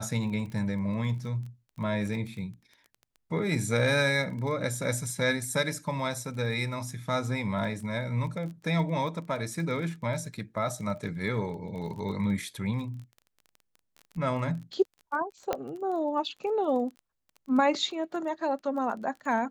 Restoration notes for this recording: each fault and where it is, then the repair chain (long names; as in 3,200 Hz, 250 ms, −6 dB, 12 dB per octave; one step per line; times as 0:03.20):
surface crackle 21 per second −38 dBFS
0:15.53: click −14 dBFS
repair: click removal